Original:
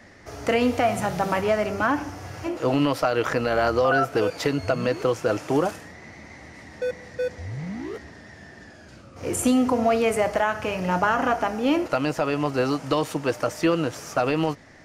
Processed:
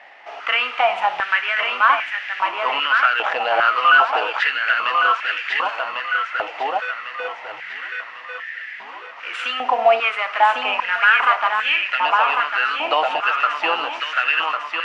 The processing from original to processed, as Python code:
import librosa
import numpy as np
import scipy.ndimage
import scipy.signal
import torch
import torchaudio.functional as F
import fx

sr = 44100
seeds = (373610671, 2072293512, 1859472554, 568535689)

p1 = fx.cvsd(x, sr, bps=64000)
p2 = fx.lowpass_res(p1, sr, hz=2800.0, q=3.9)
p3 = p2 + fx.echo_feedback(p2, sr, ms=1100, feedback_pct=44, wet_db=-4, dry=0)
y = fx.filter_held_highpass(p3, sr, hz=2.5, low_hz=780.0, high_hz=1800.0)